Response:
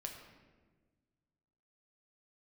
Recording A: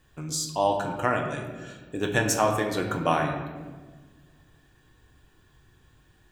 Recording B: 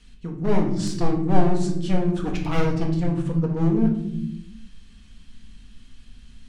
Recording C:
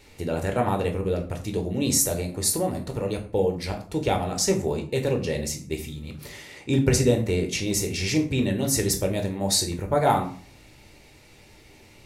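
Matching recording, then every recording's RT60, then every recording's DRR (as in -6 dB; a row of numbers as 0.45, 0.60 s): A; 1.4 s, not exponential, 0.45 s; 1.5, 0.5, 3.0 dB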